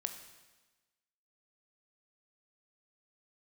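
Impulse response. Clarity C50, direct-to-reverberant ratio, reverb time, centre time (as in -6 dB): 9.0 dB, 6.5 dB, 1.2 s, 18 ms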